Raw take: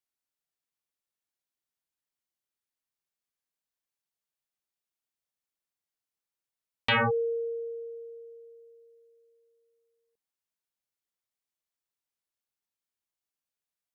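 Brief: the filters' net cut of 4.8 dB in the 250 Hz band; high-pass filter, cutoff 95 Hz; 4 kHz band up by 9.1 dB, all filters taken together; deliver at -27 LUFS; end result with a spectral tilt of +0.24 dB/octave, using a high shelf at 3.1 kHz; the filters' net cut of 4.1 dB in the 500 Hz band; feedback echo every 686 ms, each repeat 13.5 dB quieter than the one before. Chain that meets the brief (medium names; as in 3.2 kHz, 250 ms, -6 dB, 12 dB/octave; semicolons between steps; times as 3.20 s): high-pass 95 Hz; peaking EQ 250 Hz -4.5 dB; peaking EQ 500 Hz -3.5 dB; treble shelf 3.1 kHz +8.5 dB; peaking EQ 4 kHz +7 dB; feedback delay 686 ms, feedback 21%, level -13.5 dB; trim -1.5 dB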